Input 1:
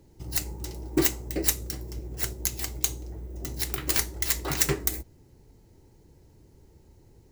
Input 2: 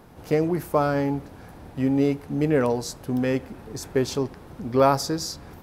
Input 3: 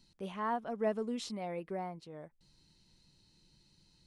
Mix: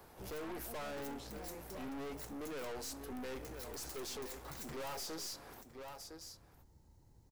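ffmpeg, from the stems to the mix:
-filter_complex "[0:a]equalizer=f=400:t=o:w=0.67:g=-9,equalizer=f=1k:t=o:w=0.67:g=4,equalizer=f=2.5k:t=o:w=0.67:g=-5,acompressor=threshold=-40dB:ratio=2,volume=-7.5dB,asplit=2[a][b];[b]volume=-19dB[c];[1:a]highpass=400,highshelf=f=9.5k:g=9,volume=26dB,asoftclip=hard,volume=-26dB,volume=-5dB,asplit=2[d][e];[e]volume=-14.5dB[f];[2:a]volume=-9dB[g];[c][f]amix=inputs=2:normalize=0,aecho=0:1:1009:1[h];[a][d][g][h]amix=inputs=4:normalize=0,aeval=exprs='(tanh(126*val(0)+0.35)-tanh(0.35))/126':c=same"

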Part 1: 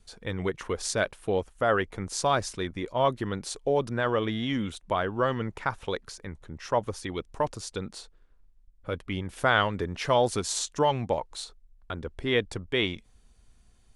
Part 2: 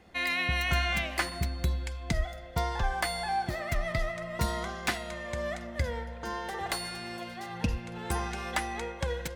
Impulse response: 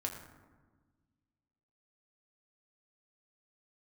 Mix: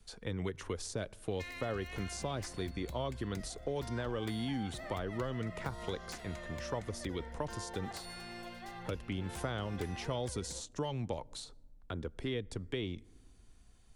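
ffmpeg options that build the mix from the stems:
-filter_complex "[0:a]acrossover=split=490|3000[a][b][c];[b]acompressor=threshold=-52dB:ratio=1.5[d];[a][d][c]amix=inputs=3:normalize=0,volume=-2dB,asplit=2[e][f];[f]volume=-24dB[g];[1:a]acompressor=threshold=-32dB:ratio=8,aeval=exprs='0.0376*(abs(mod(val(0)/0.0376+3,4)-2)-1)':c=same,adelay=1250,volume=-7dB[h];[2:a]atrim=start_sample=2205[i];[g][i]afir=irnorm=-1:irlink=0[j];[e][h][j]amix=inputs=3:normalize=0,acrossover=split=110|1000[k][l][m];[k]acompressor=threshold=-43dB:ratio=4[n];[l]acompressor=threshold=-36dB:ratio=4[o];[m]acompressor=threshold=-44dB:ratio=4[p];[n][o][p]amix=inputs=3:normalize=0"

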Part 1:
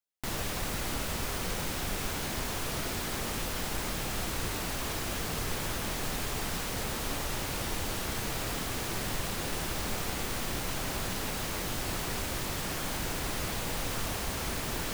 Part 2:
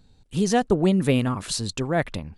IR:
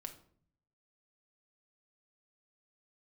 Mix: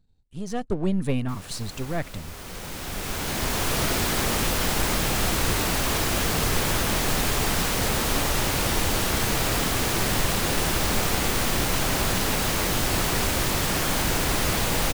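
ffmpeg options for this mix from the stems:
-filter_complex "[0:a]adelay=1050,volume=-1dB[a];[1:a]aeval=exprs='if(lt(val(0),0),0.447*val(0),val(0))':c=same,lowshelf=f=160:g=8.5,volume=-15.5dB,asplit=2[b][c];[c]apad=whole_len=704767[d];[a][d]sidechaincompress=threshold=-53dB:ratio=16:attack=39:release=1290[e];[e][b]amix=inputs=2:normalize=0,dynaudnorm=f=120:g=9:m=11dB"

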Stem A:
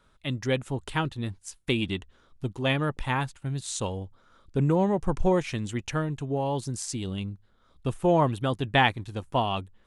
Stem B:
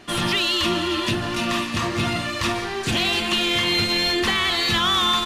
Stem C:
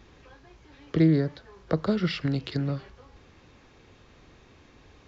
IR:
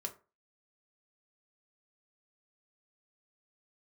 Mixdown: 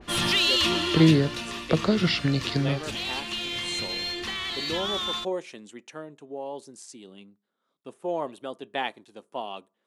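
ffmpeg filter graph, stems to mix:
-filter_complex "[0:a]highpass=f=210:w=0.5412,highpass=f=210:w=1.3066,adynamicequalizer=threshold=0.0126:dfrequency=540:dqfactor=0.97:tfrequency=540:tqfactor=0.97:attack=5:release=100:ratio=0.375:range=3.5:mode=boostabove:tftype=bell,volume=-13.5dB,asplit=2[a][b];[b]volume=-12dB[c];[1:a]adynamicequalizer=threshold=0.01:dfrequency=7900:dqfactor=0.7:tfrequency=7900:tqfactor=0.7:attack=5:release=100:ratio=0.375:range=3.5:mode=cutabove:tftype=highshelf,volume=-4.5dB,afade=t=out:st=0.78:d=0.7:silence=0.334965[d];[2:a]volume=2.5dB[e];[3:a]atrim=start_sample=2205[f];[c][f]afir=irnorm=-1:irlink=0[g];[a][d][e][g]amix=inputs=4:normalize=0,adynamicequalizer=threshold=0.00794:dfrequency=2300:dqfactor=0.7:tfrequency=2300:tqfactor=0.7:attack=5:release=100:ratio=0.375:range=3:mode=boostabove:tftype=highshelf"

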